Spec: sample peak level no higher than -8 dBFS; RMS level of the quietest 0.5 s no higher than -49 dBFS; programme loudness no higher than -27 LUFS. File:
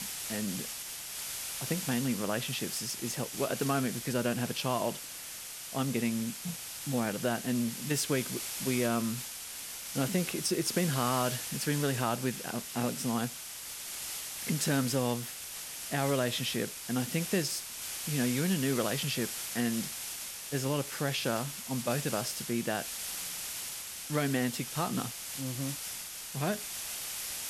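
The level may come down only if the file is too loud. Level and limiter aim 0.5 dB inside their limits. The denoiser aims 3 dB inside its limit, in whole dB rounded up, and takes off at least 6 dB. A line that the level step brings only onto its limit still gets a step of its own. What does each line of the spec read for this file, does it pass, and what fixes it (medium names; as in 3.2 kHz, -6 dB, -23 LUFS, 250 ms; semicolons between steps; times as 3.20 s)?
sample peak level -16.0 dBFS: pass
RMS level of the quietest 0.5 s -43 dBFS: fail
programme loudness -33.0 LUFS: pass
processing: noise reduction 9 dB, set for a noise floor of -43 dBFS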